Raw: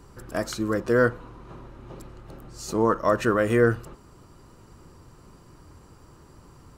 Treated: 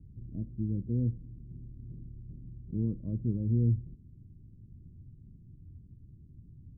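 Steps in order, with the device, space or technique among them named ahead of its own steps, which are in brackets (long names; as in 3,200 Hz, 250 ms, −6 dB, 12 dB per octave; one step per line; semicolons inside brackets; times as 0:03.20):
the neighbour's flat through the wall (low-pass filter 230 Hz 24 dB per octave; parametric band 100 Hz +5.5 dB 0.73 octaves)
level −2 dB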